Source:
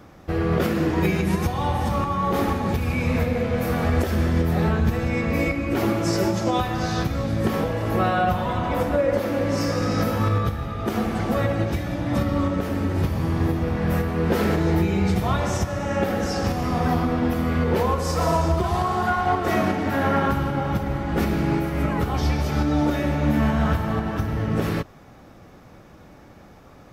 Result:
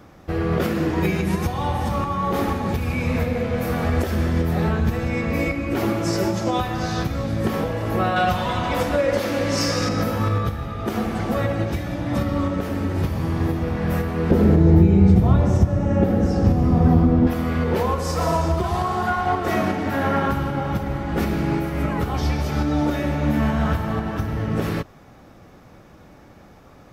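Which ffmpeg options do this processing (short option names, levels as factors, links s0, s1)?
-filter_complex "[0:a]asettb=1/sr,asplit=3[s0][s1][s2];[s0]atrim=end=8.164[s3];[s1]atrim=start=8.16:end=9.89,asetpts=PTS-STARTPTS,afade=t=in:d=0.004:c=qsin,afade=t=out:st=1.726:d=0.004:c=qsin,equalizer=f=5200:w=0.39:g=9[s4];[s2]atrim=start=9.886[s5];[s3][s4]acrossfade=d=0.004:c1=hsin:c2=qsin[s6];[s6][s5]acrossfade=d=0.004:c1=qsin:c2=hsin,asettb=1/sr,asplit=3[s7][s8][s9];[s7]atrim=end=14.314[s10];[s8]atrim=start=14.31:end=17.27,asetpts=PTS-STARTPTS,afade=t=in:d=0.004:c=qsin,afade=t=out:st=2.956:d=0.004:c=qsin,tiltshelf=f=640:g=9.5[s11];[s9]atrim=start=17.266[s12];[s10][s11]acrossfade=d=0.004:c1=hsin:c2=qsin[s13];[s13][s12]acrossfade=d=0.004:c1=qsin:c2=hsin"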